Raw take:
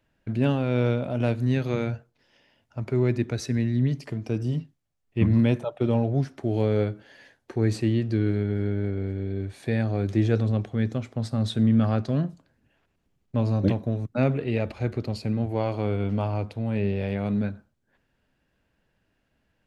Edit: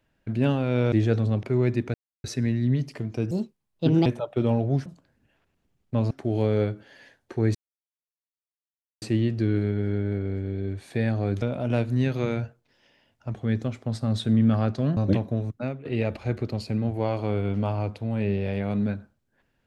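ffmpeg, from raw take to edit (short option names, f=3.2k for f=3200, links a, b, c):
-filter_complex "[0:a]asplit=13[a][b][c][d][e][f][g][h][i][j][k][l][m];[a]atrim=end=0.922[n];[b]atrim=start=10.138:end=10.652[o];[c]atrim=start=2.848:end=3.36,asetpts=PTS-STARTPTS,afade=t=out:st=0.508:d=0.004:c=hsin,apad=pad_dur=0.3[p];[d]atrim=start=3.36:end=4.434,asetpts=PTS-STARTPTS,afade=t=in:d=0.004:c=hsin[q];[e]atrim=start=4.43:end=5.5,asetpts=PTS-STARTPTS,asetrate=63063,aresample=44100[r];[f]atrim=start=5.496:end=6.302[s];[g]atrim=start=12.268:end=13.522[t];[h]atrim=start=6.298:end=7.74,asetpts=PTS-STARTPTS,afade=t=out:st=1.438:d=0.004:c=hsin,apad=pad_dur=1.47[u];[i]atrim=start=7.74:end=10.142,asetpts=PTS-STARTPTS,afade=t=in:d=0.004:c=hsin[v];[j]atrim=start=0.918:end=2.852[w];[k]atrim=start=10.648:end=12.272[x];[l]atrim=start=13.518:end=14.4,asetpts=PTS-STARTPTS,afade=t=out:st=0.562:d=0.32:c=qua:silence=0.149624[y];[m]atrim=start=14.4,asetpts=PTS-STARTPTS,afade=t=in:d=0.004:c=hsin:silence=0.149624[z];[n][o]acrossfade=d=0.004:c1=hsin:c2=hsin[aa];[p][q]concat=n=2:v=0:a=1[ab];[aa][ab]acrossfade=d=0.004:c1=hsin:c2=hsin[ac];[ac][r]acrossfade=d=0.004:c1=hsin:c2=hsin[ad];[ad][s]acrossfade=d=0.004:c1=hsin:c2=hsin[ae];[ae][t]acrossfade=d=0.004:c1=hsin:c2=hsin[af];[u][v]concat=n=2:v=0:a=1[ag];[af][ag]acrossfade=d=0.004:c1=hsin:c2=hsin[ah];[ah][w]acrossfade=d=0.004:c1=hsin:c2=hsin[ai];[ai][x]acrossfade=d=0.004:c1=hsin:c2=hsin[aj];[y][z]concat=n=2:v=0:a=1[ak];[aj][ak]acrossfade=d=0.004:c1=hsin:c2=hsin"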